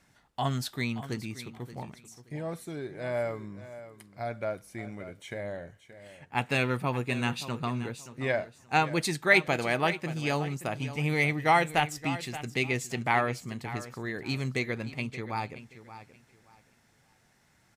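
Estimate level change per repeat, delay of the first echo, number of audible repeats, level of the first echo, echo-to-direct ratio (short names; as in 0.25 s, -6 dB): -13.0 dB, 0.576 s, 2, -14.0 dB, -13.5 dB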